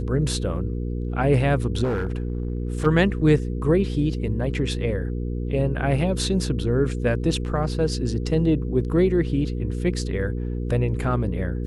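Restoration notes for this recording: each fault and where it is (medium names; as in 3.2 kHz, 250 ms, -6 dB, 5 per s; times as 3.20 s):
hum 60 Hz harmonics 8 -27 dBFS
1.83–2.87 s: clipped -20.5 dBFS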